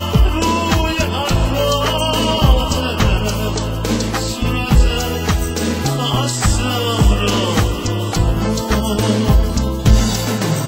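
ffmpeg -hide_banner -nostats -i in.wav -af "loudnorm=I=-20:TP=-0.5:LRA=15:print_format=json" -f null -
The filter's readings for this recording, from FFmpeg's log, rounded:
"input_i" : "-16.6",
"input_tp" : "-1.5",
"input_lra" : "1.3",
"input_thresh" : "-26.6",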